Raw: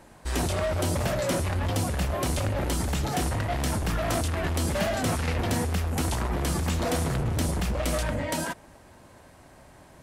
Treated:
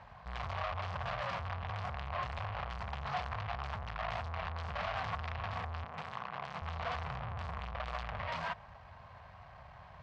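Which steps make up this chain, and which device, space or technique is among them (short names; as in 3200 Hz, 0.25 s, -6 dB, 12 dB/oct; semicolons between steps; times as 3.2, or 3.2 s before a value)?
tilt -3 dB/oct; scooped metal amplifier (tube stage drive 32 dB, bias 0.4; speaker cabinet 100–4100 Hz, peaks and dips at 320 Hz -8 dB, 730 Hz +7 dB, 1100 Hz +8 dB, 3700 Hz -3 dB; passive tone stack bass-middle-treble 10-0-10); 5.84–6.62 HPF 130 Hz 24 dB/oct; gain +7 dB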